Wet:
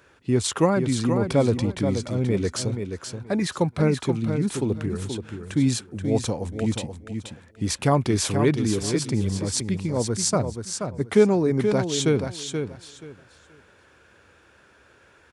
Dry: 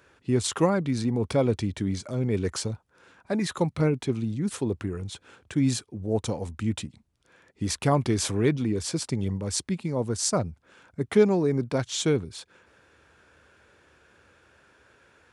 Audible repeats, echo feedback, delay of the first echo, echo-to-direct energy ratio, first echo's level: 3, 21%, 0.479 s, -7.0 dB, -7.0 dB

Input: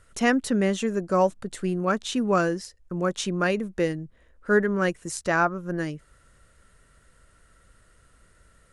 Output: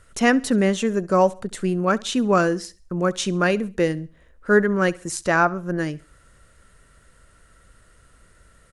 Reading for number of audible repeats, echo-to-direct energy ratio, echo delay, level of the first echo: 2, -21.5 dB, 68 ms, -22.0 dB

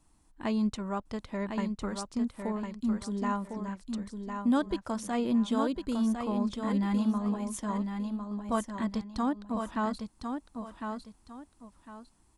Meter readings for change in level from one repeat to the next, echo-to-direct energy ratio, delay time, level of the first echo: -11.0 dB, -5.5 dB, 1.054 s, -6.0 dB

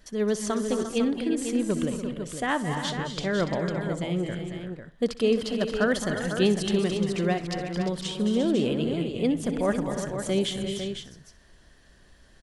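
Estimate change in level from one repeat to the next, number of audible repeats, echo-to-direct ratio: no steady repeat, 9, -3.5 dB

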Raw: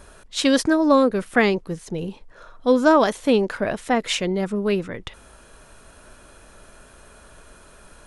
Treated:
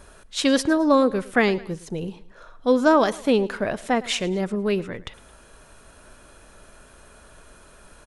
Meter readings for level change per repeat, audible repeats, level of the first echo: -6.5 dB, 2, -20.0 dB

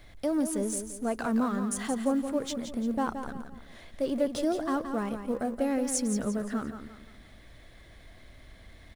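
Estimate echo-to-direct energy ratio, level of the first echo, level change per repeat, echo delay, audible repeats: -8.0 dB, -8.5 dB, -8.5 dB, 0.172 s, 4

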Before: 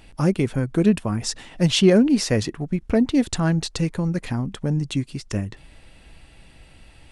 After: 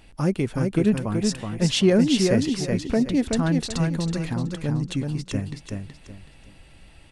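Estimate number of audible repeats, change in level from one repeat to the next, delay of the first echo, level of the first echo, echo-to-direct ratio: 3, -11.0 dB, 0.375 s, -4.0 dB, -3.5 dB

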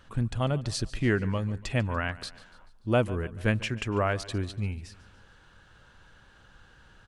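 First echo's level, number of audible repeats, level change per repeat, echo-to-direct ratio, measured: -19.0 dB, 3, -6.0 dB, -17.5 dB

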